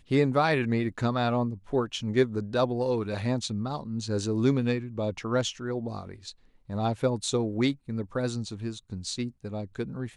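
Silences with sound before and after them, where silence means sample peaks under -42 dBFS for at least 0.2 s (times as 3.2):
6.32–6.69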